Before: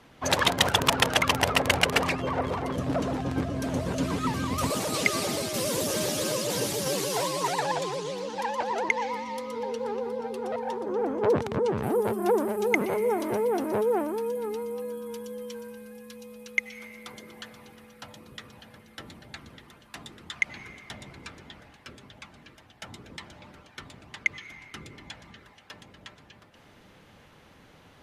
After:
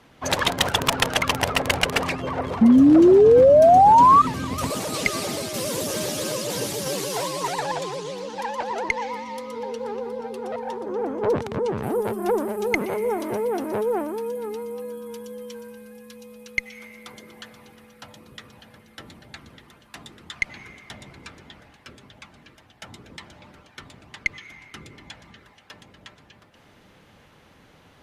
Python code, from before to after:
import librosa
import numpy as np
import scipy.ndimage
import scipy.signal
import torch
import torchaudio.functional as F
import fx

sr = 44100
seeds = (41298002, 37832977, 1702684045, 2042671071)

y = fx.cheby_harmonics(x, sr, harmonics=(2,), levels_db=(-11,), full_scale_db=-3.5)
y = fx.spec_paint(y, sr, seeds[0], shape='rise', start_s=2.61, length_s=1.61, low_hz=220.0, high_hz=1200.0, level_db=-13.0)
y = y * 10.0 ** (1.0 / 20.0)